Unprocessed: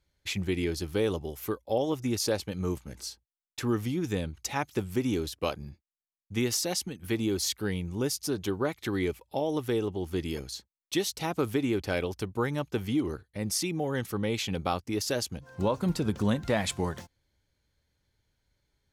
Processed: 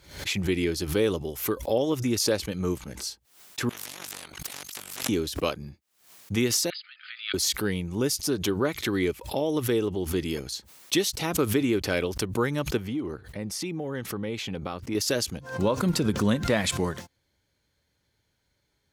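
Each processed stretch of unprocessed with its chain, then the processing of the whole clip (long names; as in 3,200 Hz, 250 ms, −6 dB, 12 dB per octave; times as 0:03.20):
0:03.69–0:05.09: tube saturation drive 25 dB, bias 0.35 + amplitude modulation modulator 48 Hz, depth 60% + every bin compressed towards the loudest bin 10 to 1
0:06.70–0:07.34: downward compressor 2.5 to 1, threshold −36 dBFS + linear-phase brick-wall band-pass 1,200–5,000 Hz
0:12.77–0:14.95: high-shelf EQ 3,700 Hz −9 dB + downward compressor 2 to 1, threshold −35 dBFS
whole clip: high-pass filter 120 Hz 6 dB per octave; dynamic equaliser 790 Hz, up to −6 dB, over −47 dBFS, Q 2.5; background raised ahead of every attack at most 110 dB per second; level +4.5 dB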